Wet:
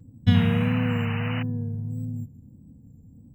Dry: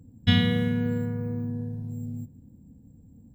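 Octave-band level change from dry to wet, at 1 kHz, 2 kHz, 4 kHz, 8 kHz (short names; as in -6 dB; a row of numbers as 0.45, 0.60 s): +6.0 dB, +1.5 dB, -5.0 dB, n/a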